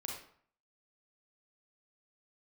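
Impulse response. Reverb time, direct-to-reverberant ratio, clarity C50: 0.55 s, -1.0 dB, 2.0 dB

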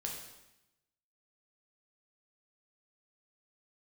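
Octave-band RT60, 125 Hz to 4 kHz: 1.1, 1.1, 0.90, 0.90, 0.95, 0.90 s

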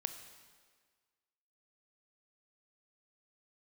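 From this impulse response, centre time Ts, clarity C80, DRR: 19 ms, 10.5 dB, 8.0 dB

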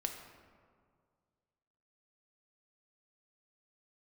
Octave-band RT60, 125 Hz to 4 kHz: 2.4, 2.1, 2.1, 2.0, 1.4, 0.95 s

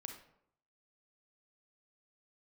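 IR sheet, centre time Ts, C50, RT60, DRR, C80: 22 ms, 6.0 dB, 0.70 s, 4.0 dB, 10.0 dB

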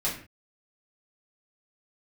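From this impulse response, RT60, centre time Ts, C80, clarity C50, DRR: 0.40 s, 30 ms, 11.0 dB, 6.5 dB, -7.5 dB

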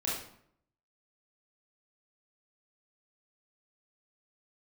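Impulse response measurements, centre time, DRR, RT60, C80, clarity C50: 54 ms, -6.5 dB, 0.65 s, 6.0 dB, 1.0 dB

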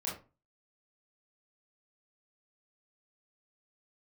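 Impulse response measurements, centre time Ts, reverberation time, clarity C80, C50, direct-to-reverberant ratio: 34 ms, 0.30 s, 13.0 dB, 6.0 dB, -6.0 dB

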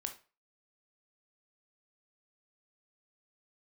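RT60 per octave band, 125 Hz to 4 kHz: 0.35, 0.30, 0.35, 0.35, 0.30, 0.30 s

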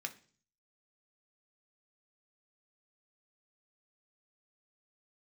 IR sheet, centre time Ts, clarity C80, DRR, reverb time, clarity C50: 6 ms, 21.0 dB, 4.5 dB, 0.45 s, 16.0 dB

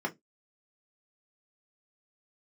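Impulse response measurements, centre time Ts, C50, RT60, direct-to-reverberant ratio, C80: 7 ms, 22.0 dB, 0.15 s, -0.5 dB, 35.0 dB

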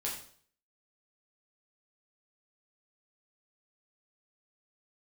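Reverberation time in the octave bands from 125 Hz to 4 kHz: 0.60, 0.50, 0.55, 0.50, 0.50, 0.50 s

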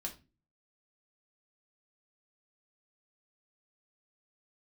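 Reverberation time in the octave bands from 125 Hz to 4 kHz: 0.60, 0.50, 0.35, 0.25, 0.25, 0.25 s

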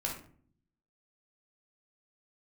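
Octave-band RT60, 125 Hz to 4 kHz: 1.0, 0.90, 0.55, 0.45, 0.40, 0.35 s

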